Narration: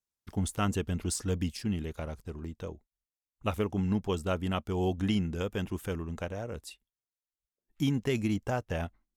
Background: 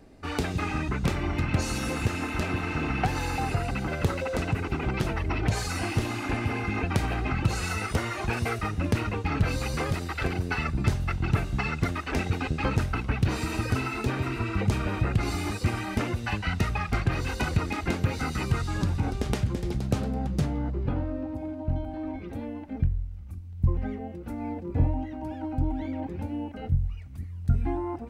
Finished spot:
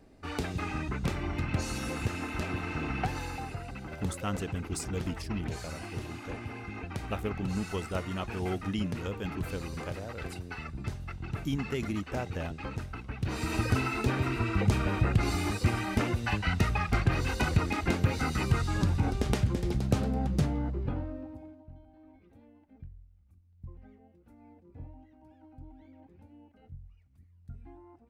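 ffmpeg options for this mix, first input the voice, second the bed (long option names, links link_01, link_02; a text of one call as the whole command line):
ffmpeg -i stem1.wav -i stem2.wav -filter_complex "[0:a]adelay=3650,volume=-4dB[link_01];[1:a]volume=6dB,afade=type=out:start_time=3.01:duration=0.53:silence=0.473151,afade=type=in:start_time=13.17:duration=0.4:silence=0.281838,afade=type=out:start_time=20.35:duration=1.32:silence=0.0841395[link_02];[link_01][link_02]amix=inputs=2:normalize=0" out.wav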